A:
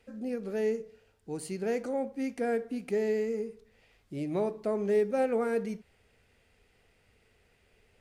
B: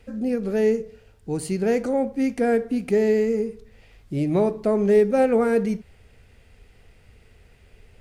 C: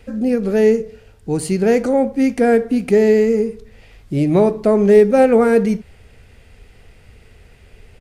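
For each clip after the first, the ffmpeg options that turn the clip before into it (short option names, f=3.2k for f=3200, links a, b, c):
-af "lowshelf=f=140:g=12,volume=8dB"
-af "aresample=32000,aresample=44100,volume=7dB"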